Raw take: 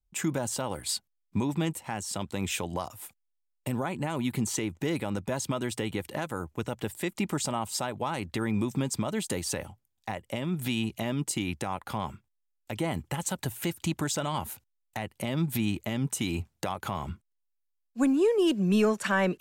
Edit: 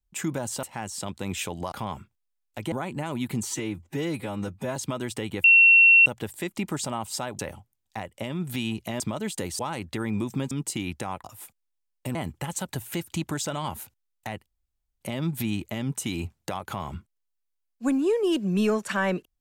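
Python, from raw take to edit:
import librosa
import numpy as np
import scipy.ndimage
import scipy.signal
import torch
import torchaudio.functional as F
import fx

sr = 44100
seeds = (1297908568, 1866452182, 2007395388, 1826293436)

y = fx.edit(x, sr, fx.cut(start_s=0.63, length_s=1.13),
    fx.swap(start_s=2.85, length_s=0.91, other_s=11.85, other_length_s=1.0),
    fx.stretch_span(start_s=4.51, length_s=0.86, factor=1.5),
    fx.bleep(start_s=6.05, length_s=0.62, hz=2720.0, db=-11.5),
    fx.swap(start_s=8.0, length_s=0.92, other_s=9.51, other_length_s=1.61),
    fx.insert_room_tone(at_s=15.16, length_s=0.55), tone=tone)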